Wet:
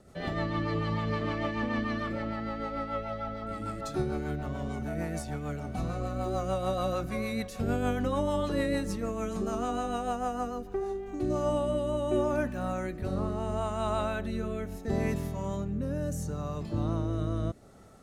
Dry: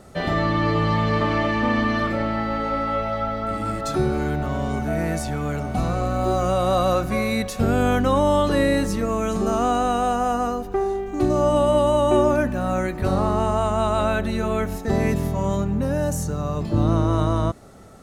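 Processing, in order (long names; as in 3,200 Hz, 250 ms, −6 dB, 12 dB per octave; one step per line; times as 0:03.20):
rotating-speaker cabinet horn 6.7 Hz, later 0.75 Hz, at 0:10.65
level −8 dB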